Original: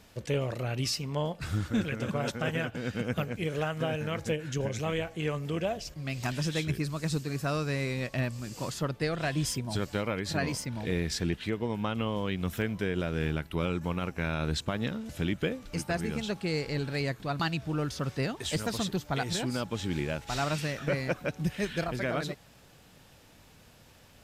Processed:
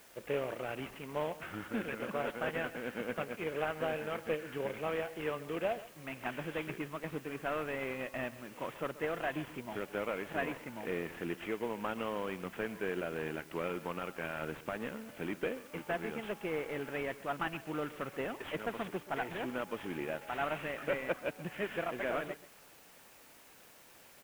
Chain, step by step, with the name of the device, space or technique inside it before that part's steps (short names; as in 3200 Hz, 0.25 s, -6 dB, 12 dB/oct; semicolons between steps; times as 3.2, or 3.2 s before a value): army field radio (BPF 320–3200 Hz; CVSD 16 kbps; white noise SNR 22 dB); echo 0.132 s -17 dB; gain -1.5 dB